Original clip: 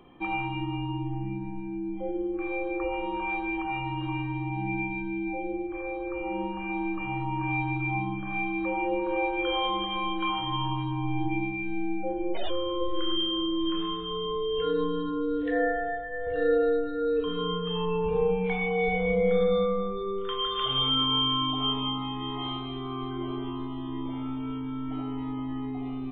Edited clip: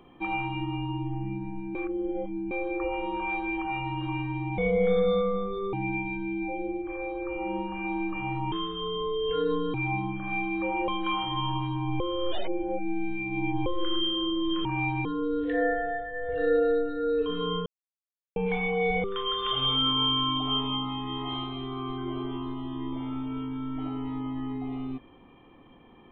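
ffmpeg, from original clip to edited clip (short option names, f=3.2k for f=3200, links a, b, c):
-filter_complex "[0:a]asplit=15[a][b][c][d][e][f][g][h][i][j][k][l][m][n][o];[a]atrim=end=1.752[p];[b]atrim=start=1.748:end=2.512,asetpts=PTS-STARTPTS,areverse[q];[c]atrim=start=2.508:end=4.582[r];[d]atrim=start=19.018:end=20.172[s];[e]atrim=start=4.578:end=7.372[t];[f]atrim=start=13.808:end=15.032[u];[g]atrim=start=7.768:end=8.912[v];[h]atrim=start=10.038:end=11.162[w];[i]atrim=start=11.158:end=12.822,asetpts=PTS-STARTPTS,areverse[x];[j]atrim=start=12.818:end=13.812[y];[k]atrim=start=7.368:end=7.772[z];[l]atrim=start=15.028:end=17.64,asetpts=PTS-STARTPTS,afade=t=out:st=2.608:d=0.004:c=hsin[aa];[m]atrim=start=17.64:end=18.34,asetpts=PTS-STARTPTS,volume=0[ab];[n]atrim=start=18.34:end=19.022,asetpts=PTS-STARTPTS,afade=t=in:d=0.004:c=hsin[ac];[o]atrim=start=20.168[ad];[p][q]acrossfade=d=0.004:c1=hsin:c2=hsin[ae];[ae][r]acrossfade=d=0.004:c1=hsin:c2=hsin[af];[af][s]acrossfade=d=0.004:c1=hsin:c2=hsin[ag];[ag][t]acrossfade=d=0.004:c1=hsin:c2=hsin[ah];[ah][u]acrossfade=d=0.004:c1=hsin:c2=hsin[ai];[ai][v]acrossfade=d=0.004:c1=hsin:c2=hsin[aj];[aj][w]acrossfade=d=0.004:c1=hsin:c2=hsin[ak];[ak][x]acrossfade=d=0.004:c1=hsin:c2=hsin[al];[al][y]acrossfade=d=0.004:c1=hsin:c2=hsin[am];[am][z]acrossfade=d=0.004:c1=hsin:c2=hsin[an];[aa][ab][ac]concat=n=3:v=0:a=1[ao];[an][ao]acrossfade=d=0.004:c1=hsin:c2=hsin[ap];[ap][ad]acrossfade=d=0.004:c1=hsin:c2=hsin"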